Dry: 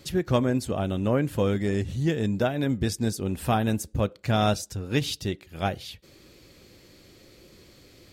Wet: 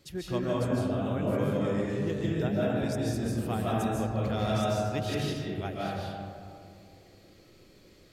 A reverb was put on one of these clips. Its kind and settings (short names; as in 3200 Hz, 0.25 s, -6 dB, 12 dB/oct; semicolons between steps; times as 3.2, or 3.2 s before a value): digital reverb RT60 2.4 s, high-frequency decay 0.35×, pre-delay 0.11 s, DRR -6 dB; gain -11 dB